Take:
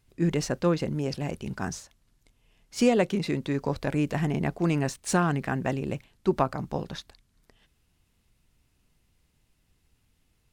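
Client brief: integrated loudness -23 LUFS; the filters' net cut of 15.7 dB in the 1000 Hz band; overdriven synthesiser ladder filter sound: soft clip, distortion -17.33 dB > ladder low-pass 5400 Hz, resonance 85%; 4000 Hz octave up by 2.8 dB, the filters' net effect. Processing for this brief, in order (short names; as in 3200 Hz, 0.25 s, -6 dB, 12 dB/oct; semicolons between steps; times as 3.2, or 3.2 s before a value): bell 1000 Hz -4.5 dB; bell 4000 Hz +4.5 dB; soft clip -16.5 dBFS; ladder low-pass 5400 Hz, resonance 85%; gain +16.5 dB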